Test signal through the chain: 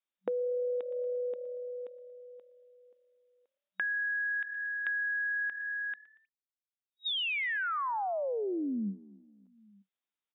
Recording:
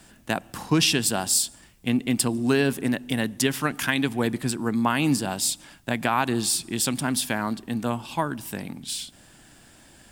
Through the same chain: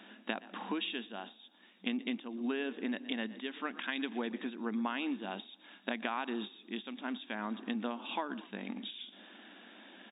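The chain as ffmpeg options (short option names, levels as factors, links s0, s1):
-filter_complex "[0:a]aemphasis=mode=production:type=50fm,asplit=2[s0][s1];[s1]asplit=3[s2][s3][s4];[s2]adelay=117,afreqshift=38,volume=0.0841[s5];[s3]adelay=234,afreqshift=76,volume=0.0389[s6];[s4]adelay=351,afreqshift=114,volume=0.0178[s7];[s5][s6][s7]amix=inputs=3:normalize=0[s8];[s0][s8]amix=inputs=2:normalize=0,acompressor=threshold=0.0251:ratio=6,afftfilt=real='re*between(b*sr/4096,190,3800)':imag='im*between(b*sr/4096,190,3800)':win_size=4096:overlap=0.75"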